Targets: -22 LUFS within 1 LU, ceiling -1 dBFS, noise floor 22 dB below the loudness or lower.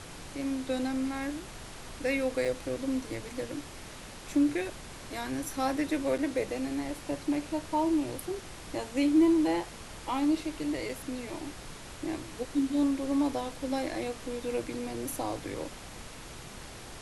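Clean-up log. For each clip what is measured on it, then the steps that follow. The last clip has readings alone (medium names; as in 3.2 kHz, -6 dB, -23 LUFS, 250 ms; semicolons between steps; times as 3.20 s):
dropouts 3; longest dropout 4.9 ms; noise floor -46 dBFS; noise floor target -54 dBFS; loudness -32.0 LUFS; peak level -15.0 dBFS; loudness target -22.0 LUFS
-> interpolate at 2.45/6.18/10.89 s, 4.9 ms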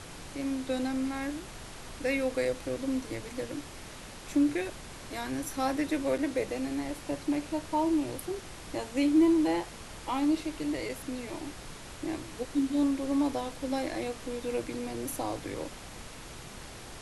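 dropouts 0; noise floor -46 dBFS; noise floor target -54 dBFS
-> noise print and reduce 8 dB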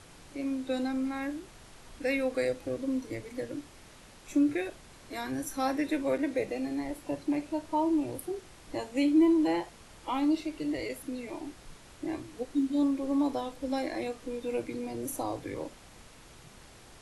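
noise floor -53 dBFS; noise floor target -54 dBFS
-> noise print and reduce 6 dB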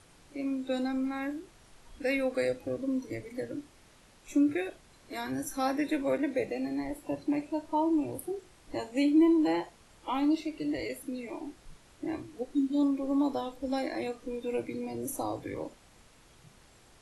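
noise floor -59 dBFS; loudness -32.0 LUFS; peak level -15.5 dBFS; loudness target -22.0 LUFS
-> trim +10 dB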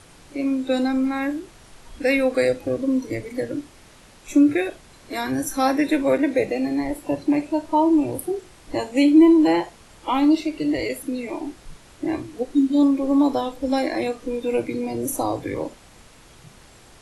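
loudness -22.0 LUFS; peak level -5.5 dBFS; noise floor -49 dBFS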